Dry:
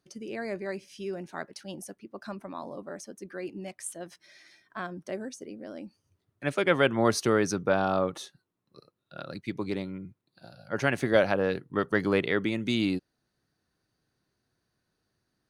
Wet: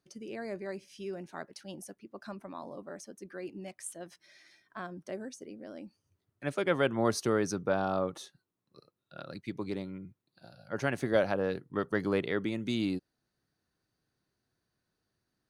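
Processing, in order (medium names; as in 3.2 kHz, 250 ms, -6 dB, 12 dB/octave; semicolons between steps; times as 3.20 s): dynamic bell 2.4 kHz, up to -4 dB, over -44 dBFS, Q 1; trim -4 dB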